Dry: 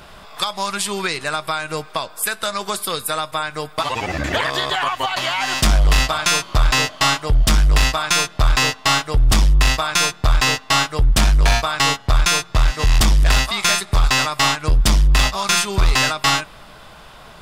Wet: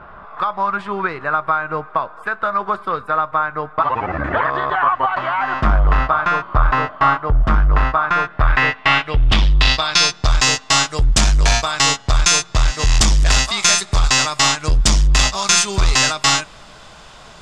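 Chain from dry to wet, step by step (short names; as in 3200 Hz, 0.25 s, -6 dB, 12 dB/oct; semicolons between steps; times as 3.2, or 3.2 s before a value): low-pass sweep 1300 Hz -> 7000 Hz, 8.08–10.46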